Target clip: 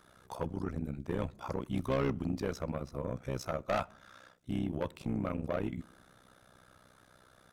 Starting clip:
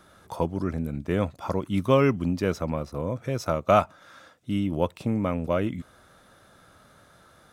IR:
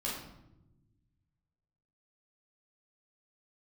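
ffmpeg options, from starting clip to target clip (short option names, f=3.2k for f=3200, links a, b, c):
-filter_complex "[0:a]tremolo=f=63:d=0.919,asoftclip=type=tanh:threshold=-22.5dB,asplit=2[a][b];[1:a]atrim=start_sample=2205,asetrate=57330,aresample=44100[c];[b][c]afir=irnorm=-1:irlink=0,volume=-25dB[d];[a][d]amix=inputs=2:normalize=0,volume=-2.5dB"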